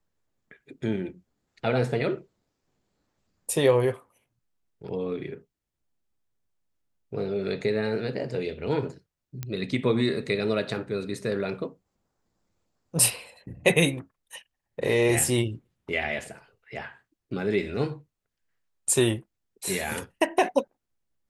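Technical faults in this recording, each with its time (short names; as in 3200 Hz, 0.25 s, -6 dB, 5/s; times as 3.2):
9.43 pop -17 dBFS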